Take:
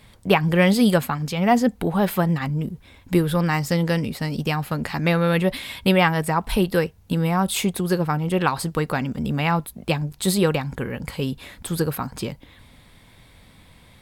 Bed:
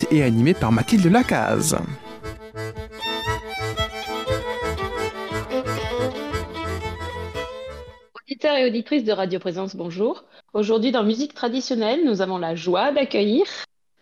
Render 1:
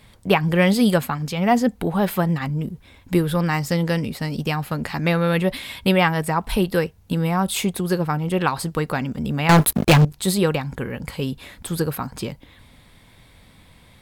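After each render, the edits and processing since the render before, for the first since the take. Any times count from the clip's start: 9.49–10.05 s: waveshaping leveller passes 5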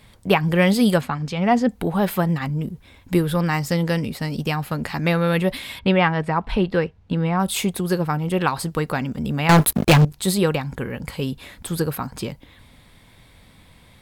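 1.01–1.69 s: distance through air 65 m; 5.79–7.40 s: low-pass 3.3 kHz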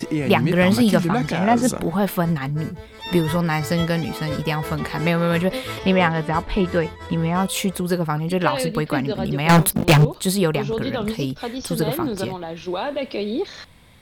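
add bed -6 dB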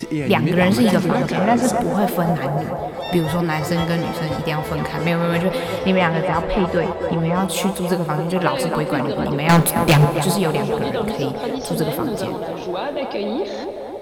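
band-passed feedback delay 268 ms, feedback 83%, band-pass 640 Hz, level -4.5 dB; plate-style reverb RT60 3.1 s, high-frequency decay 0.95×, DRR 13.5 dB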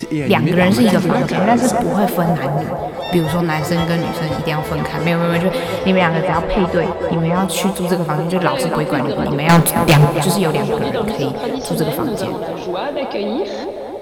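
trim +3 dB; peak limiter -1 dBFS, peak gain reduction 1 dB

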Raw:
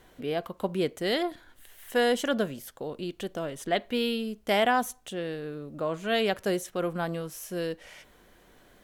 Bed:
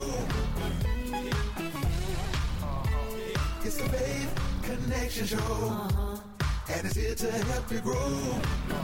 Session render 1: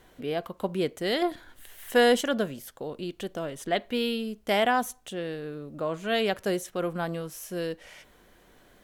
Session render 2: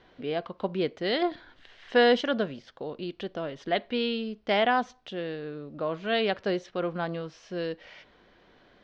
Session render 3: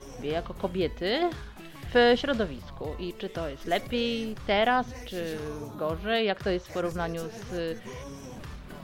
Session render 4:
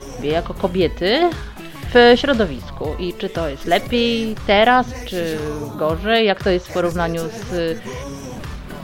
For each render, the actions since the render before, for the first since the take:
1.22–2.21 s: gain +4 dB
steep low-pass 5 kHz 36 dB/octave; bass shelf 77 Hz -8 dB
add bed -11.5 dB
trim +11 dB; peak limiter -1 dBFS, peak gain reduction 1 dB

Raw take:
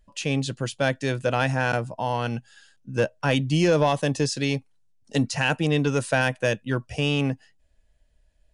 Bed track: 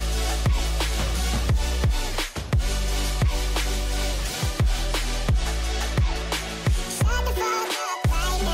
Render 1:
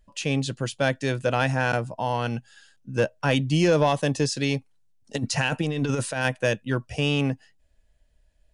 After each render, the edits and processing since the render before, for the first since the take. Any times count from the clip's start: 5.16–6.26 s: compressor with a negative ratio -24 dBFS, ratio -0.5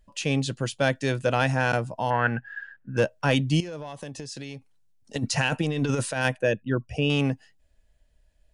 2.10–2.97 s: resonant low-pass 1.7 kHz, resonance Q 8.7; 3.60–5.16 s: compression 12:1, threshold -33 dBFS; 6.35–7.10 s: resonances exaggerated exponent 1.5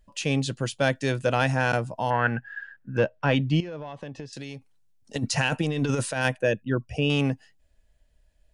2.97–4.33 s: low-pass 3.2 kHz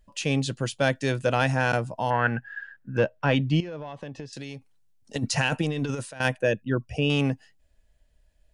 5.65–6.20 s: fade out, to -15 dB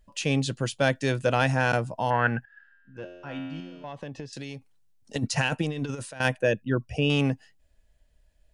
2.45–3.84 s: feedback comb 89 Hz, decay 1.5 s, mix 90%; 5.27–6.01 s: upward expansion, over -34 dBFS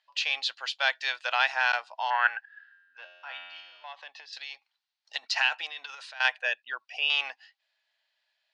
Chebyshev band-pass 770–4400 Hz, order 3; tilt EQ +3.5 dB/octave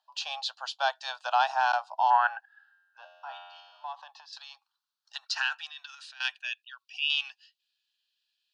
high-pass sweep 740 Hz -> 2.5 kHz, 3.63–6.56 s; static phaser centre 870 Hz, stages 4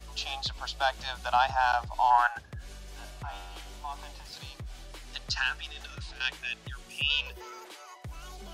add bed track -20.5 dB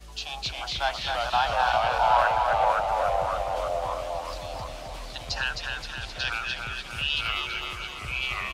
feedback delay 262 ms, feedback 58%, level -4.5 dB; ever faster or slower copies 242 ms, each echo -2 st, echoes 3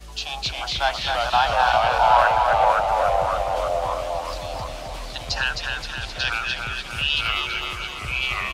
trim +5 dB

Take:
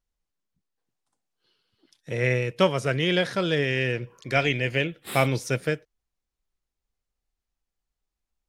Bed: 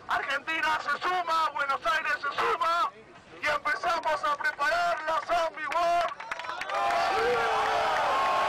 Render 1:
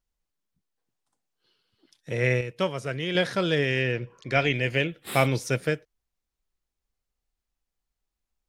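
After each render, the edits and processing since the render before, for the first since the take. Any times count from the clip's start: 2.41–3.15 s: gain -6 dB; 3.81–4.54 s: distance through air 59 m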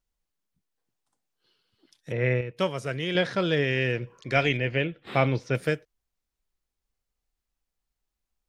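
2.12–2.57 s: distance through air 310 m; 3.14–3.82 s: distance through air 76 m; 4.57–5.55 s: distance through air 220 m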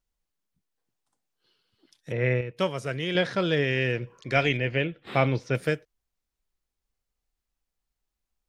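no audible change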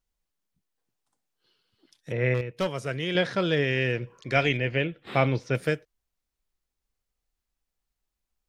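2.34–2.78 s: hard clipper -21 dBFS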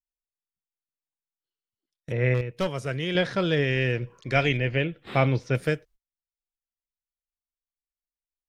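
gate -51 dBFS, range -28 dB; bass shelf 80 Hz +10.5 dB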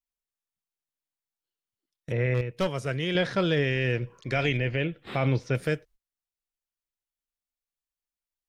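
peak limiter -14.5 dBFS, peak gain reduction 7 dB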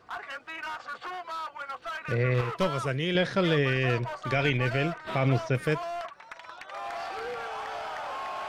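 add bed -9.5 dB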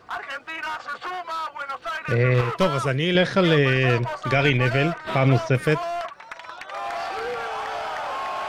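trim +6.5 dB

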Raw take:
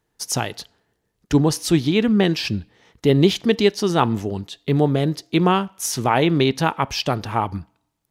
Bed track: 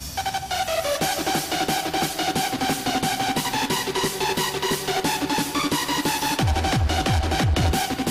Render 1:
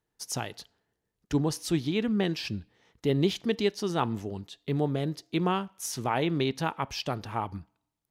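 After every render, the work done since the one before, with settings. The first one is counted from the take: trim -10 dB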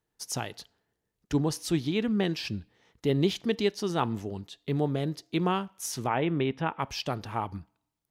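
6.07–6.79 s: Savitzky-Golay filter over 25 samples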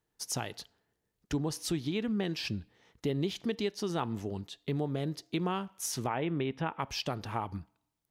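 compression 3:1, threshold -30 dBFS, peak gain reduction 8.5 dB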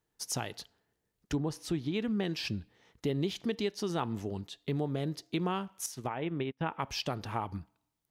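1.35–1.94 s: treble shelf 3.2 kHz -9 dB; 5.86–6.61 s: upward expansion 2.5:1, over -49 dBFS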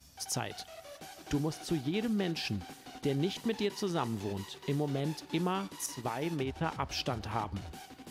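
add bed track -25 dB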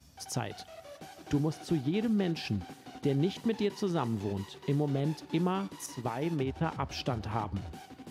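high-pass 79 Hz; tilt EQ -1.5 dB/octave

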